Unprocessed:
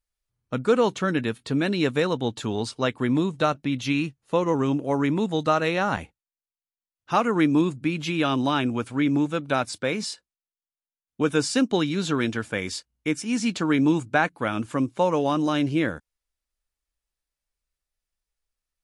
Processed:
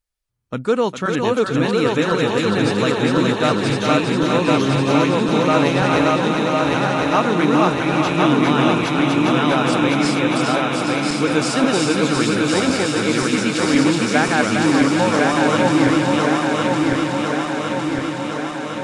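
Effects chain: backward echo that repeats 529 ms, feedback 80%, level -0.5 dB; on a send: thinning echo 406 ms, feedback 73%, high-pass 510 Hz, level -4.5 dB; on the sum: trim +2 dB

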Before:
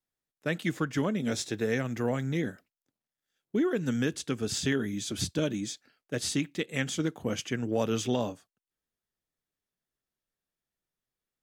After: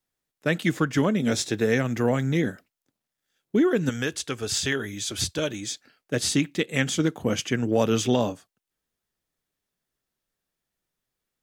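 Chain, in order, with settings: 3.89–5.71 s: peaking EQ 210 Hz -11.5 dB 1.6 oct; trim +6.5 dB

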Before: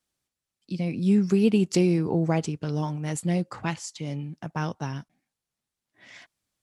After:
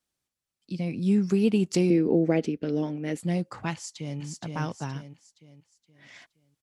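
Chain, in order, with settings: 1.90–3.20 s: graphic EQ 125/250/500/1000/2000/8000 Hz -11/+10/+7/-11/+6/-12 dB; 3.73–4.19 s: echo throw 470 ms, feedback 40%, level -3 dB; trim -2 dB

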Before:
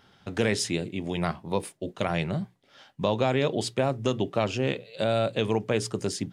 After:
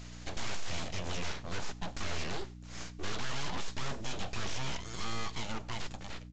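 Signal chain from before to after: fade out at the end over 1.99 s; tilt EQ +4 dB/octave; full-wave rectifier; hum 60 Hz, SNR 23 dB; saturation -35.5 dBFS, distortion -1 dB; delay 94 ms -23 dB; on a send at -17.5 dB: reverberation, pre-delay 3 ms; on the sum: trim +7.5 dB; µ-law 128 kbps 16 kHz

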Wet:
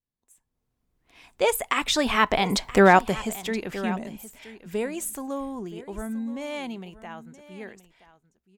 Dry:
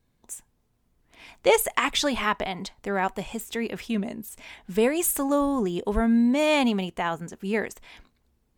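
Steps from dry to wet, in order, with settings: Doppler pass-by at 2.73 s, 12 m/s, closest 1.9 m; level rider gain up to 15.5 dB; on a send: delay 974 ms -16.5 dB

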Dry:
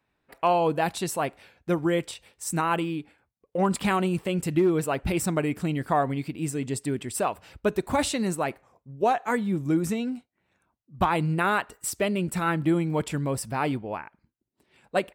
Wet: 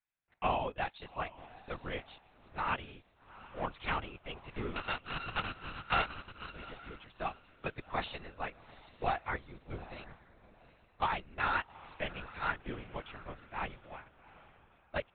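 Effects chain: 4.76–6.53 s: sorted samples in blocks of 32 samples; high-pass 1.4 kHz 6 dB/octave; on a send: echo that smears into a reverb 778 ms, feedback 41%, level -11 dB; on the sum: LPC vocoder at 8 kHz whisper; upward expansion 1.5:1, over -52 dBFS; trim -2 dB

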